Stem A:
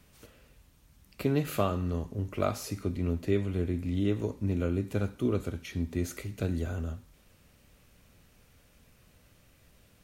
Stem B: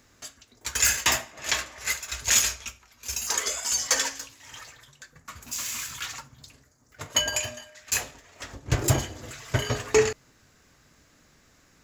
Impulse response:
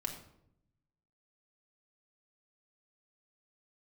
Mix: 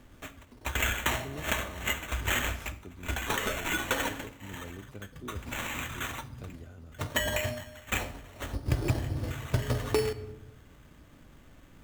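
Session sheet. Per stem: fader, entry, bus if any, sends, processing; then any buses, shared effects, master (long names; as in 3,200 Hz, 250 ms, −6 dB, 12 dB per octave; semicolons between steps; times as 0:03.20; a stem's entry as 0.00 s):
−15.0 dB, 0.00 s, no send, no processing
−1.0 dB, 0.00 s, send −7 dB, low-pass filter 9,700 Hz 12 dB per octave; spectral tilt −2 dB per octave; decimation without filtering 9×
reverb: on, RT60 0.75 s, pre-delay 3 ms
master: downward compressor 5 to 1, threshold −25 dBFS, peak gain reduction 15 dB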